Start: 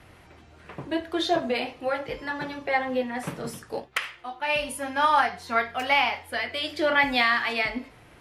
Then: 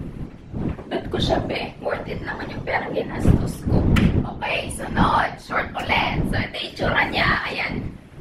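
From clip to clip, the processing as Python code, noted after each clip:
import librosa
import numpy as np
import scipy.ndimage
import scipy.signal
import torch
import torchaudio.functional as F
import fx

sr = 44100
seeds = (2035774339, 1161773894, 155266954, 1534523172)

y = fx.dmg_wind(x, sr, seeds[0], corner_hz=130.0, level_db=-23.0)
y = scipy.signal.sosfilt(scipy.signal.butter(2, 76.0, 'highpass', fs=sr, output='sos'), y)
y = fx.whisperise(y, sr, seeds[1])
y = y * librosa.db_to_amplitude(1.5)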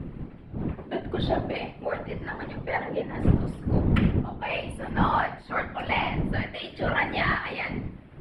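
y = np.convolve(x, np.full(7, 1.0 / 7))[:len(x)]
y = y + 10.0 ** (-20.5 / 20.0) * np.pad(y, (int(127 * sr / 1000.0), 0))[:len(y)]
y = y * librosa.db_to_amplitude(-5.0)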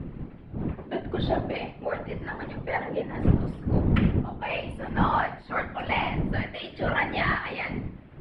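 y = fx.air_absorb(x, sr, metres=67.0)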